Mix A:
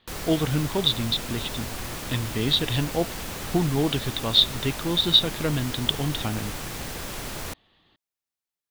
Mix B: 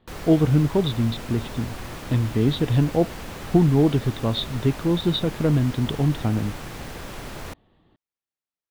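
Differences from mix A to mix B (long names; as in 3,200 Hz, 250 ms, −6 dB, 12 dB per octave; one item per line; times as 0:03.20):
speech: add tilt shelving filter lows +7.5 dB, about 1,100 Hz
master: add high-shelf EQ 3,700 Hz −9.5 dB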